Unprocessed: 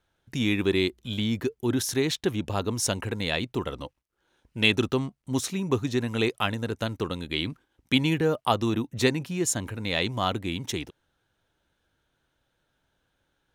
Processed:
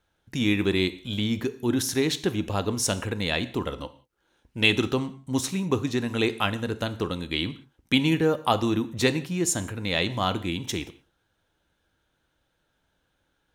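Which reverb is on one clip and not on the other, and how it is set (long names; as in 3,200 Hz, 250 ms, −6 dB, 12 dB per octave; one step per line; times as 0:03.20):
reverb whose tail is shaped and stops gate 210 ms falling, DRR 11.5 dB
level +1 dB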